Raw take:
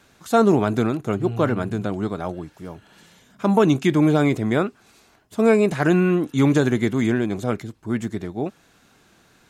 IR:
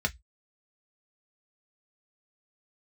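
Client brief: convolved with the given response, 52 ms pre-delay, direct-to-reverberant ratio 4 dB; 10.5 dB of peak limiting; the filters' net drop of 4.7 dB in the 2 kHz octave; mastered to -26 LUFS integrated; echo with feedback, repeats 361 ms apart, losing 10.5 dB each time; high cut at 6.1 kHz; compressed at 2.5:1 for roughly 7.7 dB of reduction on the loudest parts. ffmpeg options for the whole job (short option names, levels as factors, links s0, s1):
-filter_complex "[0:a]lowpass=6100,equalizer=f=2000:t=o:g=-6.5,acompressor=threshold=0.0631:ratio=2.5,alimiter=limit=0.075:level=0:latency=1,aecho=1:1:361|722|1083:0.299|0.0896|0.0269,asplit=2[s0][s1];[1:a]atrim=start_sample=2205,adelay=52[s2];[s1][s2]afir=irnorm=-1:irlink=0,volume=0.266[s3];[s0][s3]amix=inputs=2:normalize=0,volume=1.68"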